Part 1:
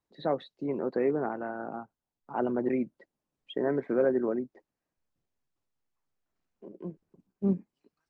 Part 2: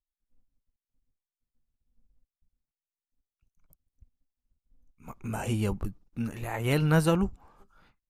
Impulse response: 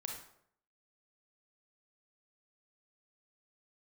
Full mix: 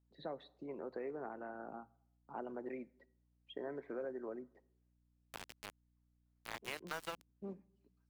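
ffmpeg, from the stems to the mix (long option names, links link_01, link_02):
-filter_complex "[0:a]bandreject=frequency=60:width_type=h:width=6,bandreject=frequency=120:width_type=h:width=6,volume=-10.5dB,asplit=2[link_01][link_02];[link_02]volume=-17.5dB[link_03];[1:a]highpass=810,aeval=exprs='val(0)*gte(abs(val(0)),0.0299)':channel_layout=same,volume=-1.5dB[link_04];[2:a]atrim=start_sample=2205[link_05];[link_03][link_05]afir=irnorm=-1:irlink=0[link_06];[link_01][link_04][link_06]amix=inputs=3:normalize=0,acrossover=split=420|5600[link_07][link_08][link_09];[link_07]acompressor=threshold=-51dB:ratio=4[link_10];[link_08]acompressor=threshold=-42dB:ratio=4[link_11];[link_09]acompressor=threshold=-58dB:ratio=4[link_12];[link_10][link_11][link_12]amix=inputs=3:normalize=0,aeval=exprs='val(0)+0.000178*(sin(2*PI*60*n/s)+sin(2*PI*2*60*n/s)/2+sin(2*PI*3*60*n/s)/3+sin(2*PI*4*60*n/s)/4+sin(2*PI*5*60*n/s)/5)':channel_layout=same"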